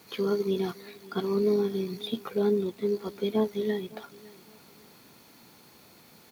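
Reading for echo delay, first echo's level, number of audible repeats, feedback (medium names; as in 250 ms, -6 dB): 559 ms, -22.0 dB, 2, 30%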